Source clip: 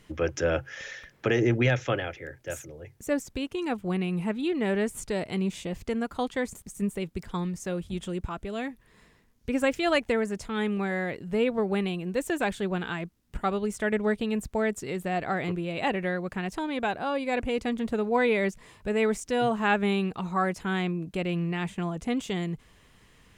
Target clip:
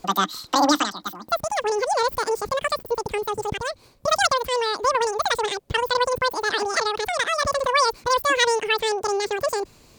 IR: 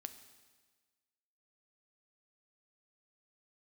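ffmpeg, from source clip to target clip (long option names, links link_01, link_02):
-af "asetrate=103194,aresample=44100,volume=5.5dB"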